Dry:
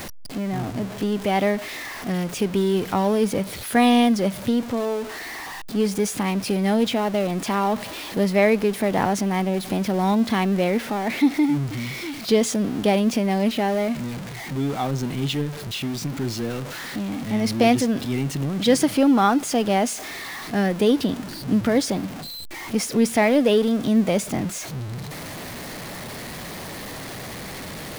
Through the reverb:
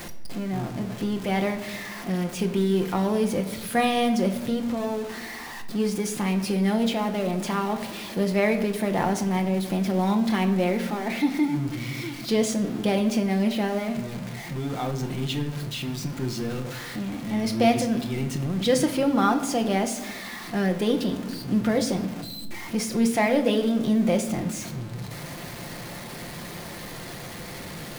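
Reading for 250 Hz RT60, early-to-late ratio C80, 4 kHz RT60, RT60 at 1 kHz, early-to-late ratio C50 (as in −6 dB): 2.0 s, 13.5 dB, 0.65 s, 1.0 s, 11.0 dB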